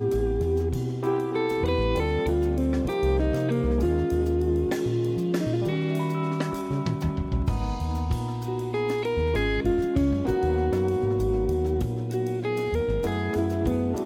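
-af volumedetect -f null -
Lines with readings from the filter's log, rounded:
mean_volume: -24.8 dB
max_volume: -12.0 dB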